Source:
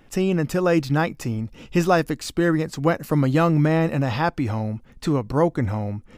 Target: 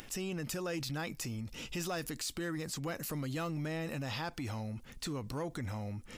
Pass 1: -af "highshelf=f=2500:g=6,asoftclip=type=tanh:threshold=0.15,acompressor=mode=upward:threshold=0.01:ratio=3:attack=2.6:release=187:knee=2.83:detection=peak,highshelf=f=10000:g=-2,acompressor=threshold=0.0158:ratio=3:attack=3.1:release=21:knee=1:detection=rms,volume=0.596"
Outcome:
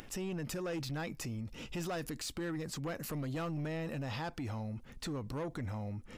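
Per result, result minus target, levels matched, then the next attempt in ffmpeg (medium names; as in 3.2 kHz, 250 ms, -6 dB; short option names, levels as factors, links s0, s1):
saturation: distortion +9 dB; 4 kHz band -2.5 dB
-af "highshelf=f=2500:g=6,asoftclip=type=tanh:threshold=0.376,acompressor=mode=upward:threshold=0.01:ratio=3:attack=2.6:release=187:knee=2.83:detection=peak,highshelf=f=10000:g=-2,acompressor=threshold=0.0158:ratio=3:attack=3.1:release=21:knee=1:detection=rms,volume=0.596"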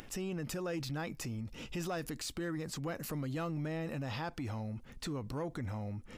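4 kHz band -3.0 dB
-af "highshelf=f=2500:g=15.5,asoftclip=type=tanh:threshold=0.376,acompressor=mode=upward:threshold=0.01:ratio=3:attack=2.6:release=187:knee=2.83:detection=peak,highshelf=f=10000:g=-2,acompressor=threshold=0.0158:ratio=3:attack=3.1:release=21:knee=1:detection=rms,volume=0.596"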